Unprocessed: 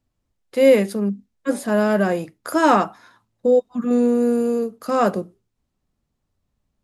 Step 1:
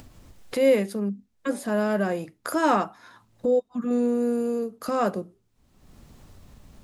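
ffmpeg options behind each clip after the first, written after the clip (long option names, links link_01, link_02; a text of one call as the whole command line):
ffmpeg -i in.wav -af "acompressor=mode=upward:threshold=-18dB:ratio=2.5,volume=-6dB" out.wav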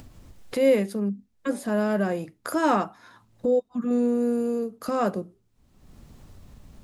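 ffmpeg -i in.wav -af "lowshelf=frequency=330:gain=3.5,volume=-1.5dB" out.wav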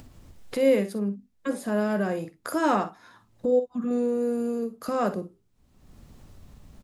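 ffmpeg -i in.wav -af "aecho=1:1:48|60:0.2|0.178,volume=-1.5dB" out.wav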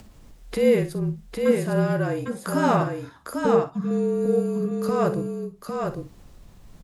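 ffmpeg -i in.wav -af "aecho=1:1:804:0.631,afreqshift=-39,volume=2dB" out.wav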